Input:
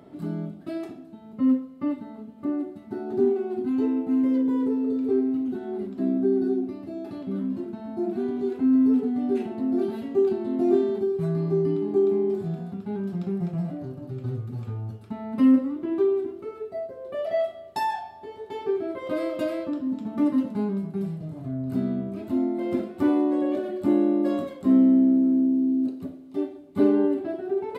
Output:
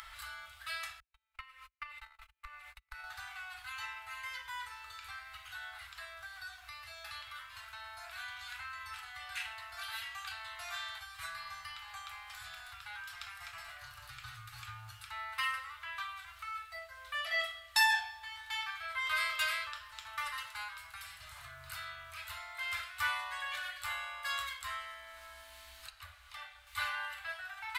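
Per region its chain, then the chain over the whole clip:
1–3.04 bell 2400 Hz +11 dB 0.32 oct + gate -38 dBFS, range -46 dB + compressor 16:1, threshold -34 dBFS
25.9–26.67 high shelf 3700 Hz -10 dB + doubler 24 ms -12 dB
whole clip: inverse Chebyshev band-stop 180–400 Hz, stop band 80 dB; upward compressor, threshold -55 dBFS; gain +11 dB

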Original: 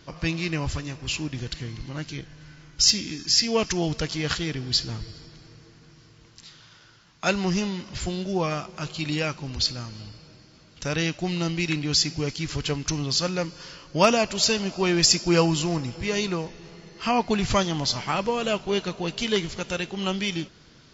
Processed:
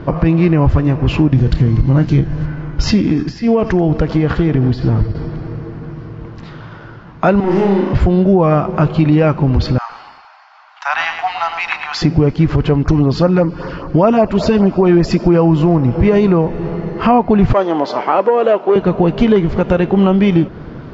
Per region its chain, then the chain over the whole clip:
1.32–2.46 tone controls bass +6 dB, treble +12 dB + doubler 30 ms -11.5 dB
3.02–5.15 expander -36 dBFS + compressor 10:1, threshold -30 dBFS + echo 83 ms -15.5 dB
7.4–7.93 steep high-pass 230 Hz + overloaded stage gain 34 dB + flutter echo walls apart 6.1 m, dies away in 0.57 s
9.78–12.02 steep high-pass 750 Hz 72 dB/oct + lo-fi delay 0.11 s, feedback 35%, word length 8-bit, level -7 dB
12.82–15.2 bell 140 Hz -3.5 dB 0.39 oct + notch 6200 Hz, Q 27 + LFO notch sine 5.1 Hz 500–3400 Hz
17.53–18.76 ladder high-pass 290 Hz, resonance 20% + core saturation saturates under 1400 Hz
whole clip: LPF 1000 Hz 12 dB/oct; compressor 3:1, threshold -34 dBFS; maximiser +26 dB; gain -1 dB

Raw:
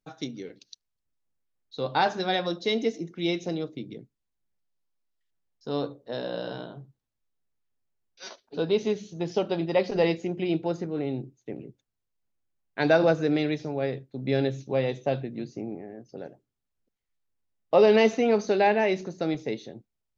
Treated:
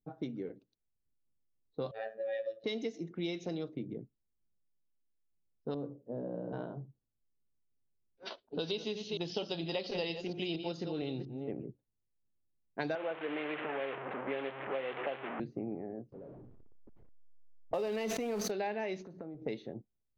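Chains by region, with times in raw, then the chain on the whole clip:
1.91–2.64 vowel filter e + robotiser 111 Hz + comb 1.7 ms, depth 87%
5.74–6.53 band-pass 190 Hz, Q 0.74 + air absorption 91 m
8.25–11.52 reverse delay 0.231 s, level -10 dB + band shelf 3800 Hz +12 dB 1.2 oct
12.95–15.4 delta modulation 16 kbps, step -25.5 dBFS + HPF 440 Hz
16.12–18.51 zero-crossing step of -32 dBFS + gate -30 dBFS, range -14 dB + sustainer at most 26 dB/s
19.02–19.42 high shelf 3200 Hz -8.5 dB + compressor 8:1, threshold -41 dBFS
whole clip: low-pass opened by the level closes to 410 Hz, open at -23.5 dBFS; compressor 6:1, threshold -34 dBFS

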